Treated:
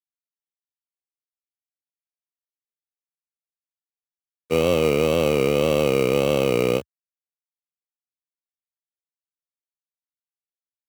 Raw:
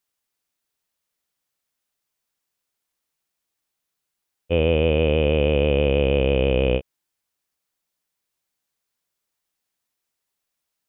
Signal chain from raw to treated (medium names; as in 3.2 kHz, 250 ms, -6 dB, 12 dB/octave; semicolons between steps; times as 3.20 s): send-on-delta sampling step -40 dBFS; wow and flutter 110 cents; Bessel high-pass 160 Hz, order 8; in parallel at -5.5 dB: sample-and-hold 26×; on the sum: trim -1.5 dB